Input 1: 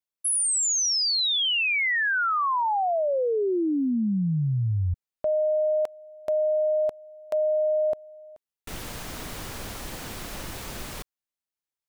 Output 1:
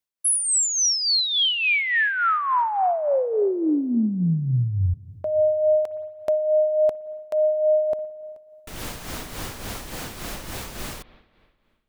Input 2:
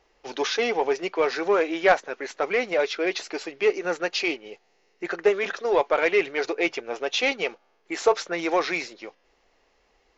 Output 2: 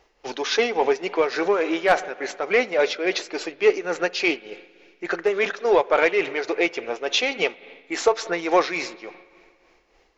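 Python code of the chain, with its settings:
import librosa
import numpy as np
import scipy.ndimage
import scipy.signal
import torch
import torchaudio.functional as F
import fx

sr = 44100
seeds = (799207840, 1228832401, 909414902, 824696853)

y = np.clip(x, -10.0 ** (-9.5 / 20.0), 10.0 ** (-9.5 / 20.0))
y = fx.rev_spring(y, sr, rt60_s=2.2, pass_ms=(55, 59), chirp_ms=35, drr_db=17.0)
y = y * (1.0 - 0.56 / 2.0 + 0.56 / 2.0 * np.cos(2.0 * np.pi * 3.5 * (np.arange(len(y)) / sr)))
y = y * librosa.db_to_amplitude(5.0)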